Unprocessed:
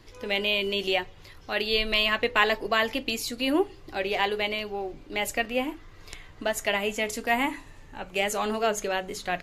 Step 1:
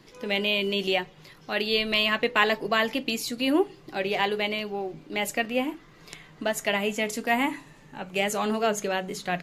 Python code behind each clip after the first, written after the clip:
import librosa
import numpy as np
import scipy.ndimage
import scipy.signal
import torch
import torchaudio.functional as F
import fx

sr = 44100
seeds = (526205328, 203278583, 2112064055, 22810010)

y = fx.low_shelf_res(x, sr, hz=110.0, db=-12.0, q=3.0)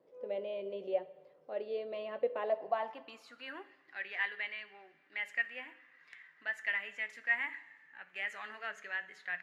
y = fx.filter_sweep_bandpass(x, sr, from_hz=540.0, to_hz=1800.0, start_s=2.38, end_s=3.62, q=6.2)
y = fx.rev_fdn(y, sr, rt60_s=1.1, lf_ratio=1.0, hf_ratio=0.9, size_ms=34.0, drr_db=13.5)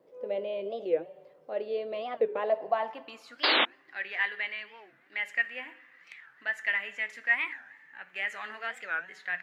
y = fx.spec_paint(x, sr, seeds[0], shape='noise', start_s=3.44, length_s=0.22, low_hz=240.0, high_hz=4400.0, level_db=-29.0)
y = fx.record_warp(y, sr, rpm=45.0, depth_cents=250.0)
y = y * 10.0 ** (5.5 / 20.0)